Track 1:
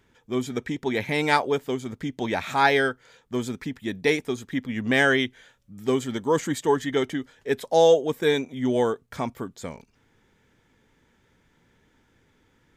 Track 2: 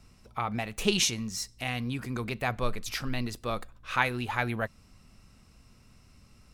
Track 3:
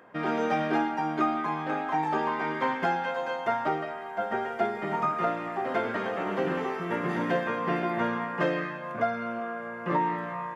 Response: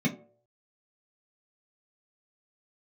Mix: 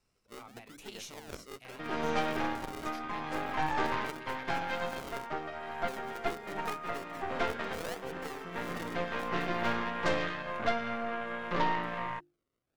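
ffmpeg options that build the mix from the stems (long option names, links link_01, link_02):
-filter_complex "[0:a]acrusher=samples=36:mix=1:aa=0.000001:lfo=1:lforange=36:lforate=0.82,volume=-17.5dB,asplit=2[link_01][link_02];[1:a]volume=-16dB[link_03];[2:a]equalizer=frequency=5500:width_type=o:width=2.1:gain=6,acompressor=mode=upward:threshold=-28dB:ratio=2.5,adelay=1650,volume=-4.5dB[link_04];[link_02]apad=whole_len=538225[link_05];[link_04][link_05]sidechaincompress=threshold=-40dB:ratio=8:attack=5.3:release=912[link_06];[link_01][link_03]amix=inputs=2:normalize=0,lowshelf=frequency=280:gain=-8,acompressor=threshold=-48dB:ratio=1.5,volume=0dB[link_07];[link_06][link_07]amix=inputs=2:normalize=0,bandreject=frequency=50:width_type=h:width=6,bandreject=frequency=100:width_type=h:width=6,bandreject=frequency=150:width_type=h:width=6,bandreject=frequency=200:width_type=h:width=6,bandreject=frequency=250:width_type=h:width=6,bandreject=frequency=300:width_type=h:width=6,bandreject=frequency=350:width_type=h:width=6,aeval=exprs='0.126*(cos(1*acos(clip(val(0)/0.126,-1,1)))-cos(1*PI/2))+0.0251*(cos(6*acos(clip(val(0)/0.126,-1,1)))-cos(6*PI/2))':channel_layout=same"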